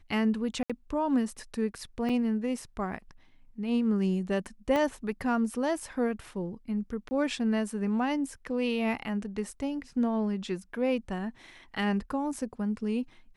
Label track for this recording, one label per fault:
0.630000	0.700000	gap 66 ms
2.090000	2.090000	gap 4.8 ms
4.760000	4.760000	pop -17 dBFS
7.090000	7.110000	gap 20 ms

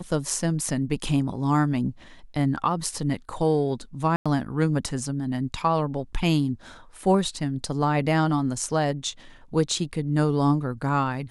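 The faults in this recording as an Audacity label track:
4.160000	4.260000	gap 96 ms

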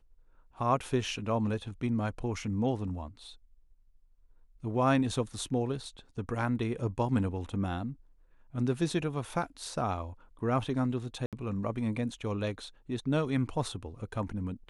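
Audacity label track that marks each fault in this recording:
11.260000	11.330000	gap 67 ms

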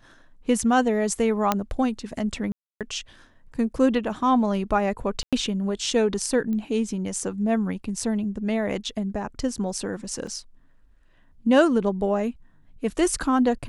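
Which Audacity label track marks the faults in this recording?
1.520000	1.520000	pop -6 dBFS
2.520000	2.810000	gap 0.287 s
5.230000	5.330000	gap 96 ms
6.530000	6.530000	pop -21 dBFS
10.270000	10.270000	gap 2.5 ms

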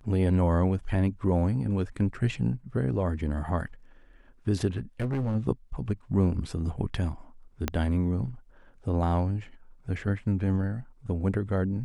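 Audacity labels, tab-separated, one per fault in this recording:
4.770000	5.360000	clipped -25 dBFS
7.680000	7.680000	pop -12 dBFS

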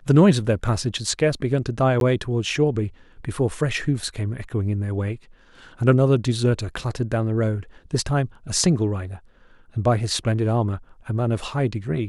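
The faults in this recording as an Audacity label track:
2.000000	2.010000	gap 12 ms

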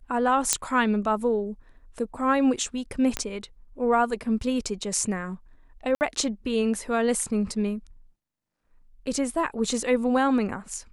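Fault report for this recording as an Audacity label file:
0.530000	0.530000	pop -4 dBFS
3.170000	3.170000	pop -9 dBFS
5.950000	6.010000	gap 59 ms

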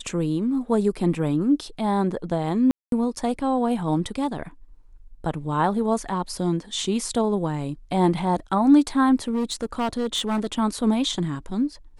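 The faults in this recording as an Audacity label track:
2.710000	2.920000	gap 0.212 s
9.270000	10.470000	clipped -20 dBFS

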